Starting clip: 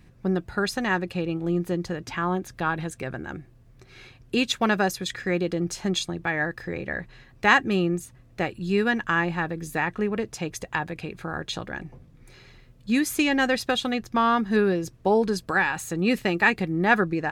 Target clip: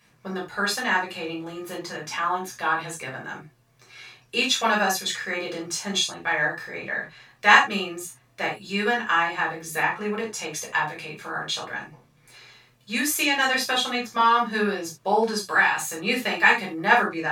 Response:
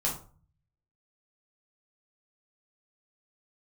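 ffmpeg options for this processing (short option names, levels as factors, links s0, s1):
-filter_complex "[0:a]highpass=f=1300:p=1[s0];[1:a]atrim=start_sample=2205,afade=t=out:st=0.14:d=0.01,atrim=end_sample=6615,asetrate=40572,aresample=44100[s1];[s0][s1]afir=irnorm=-1:irlink=0"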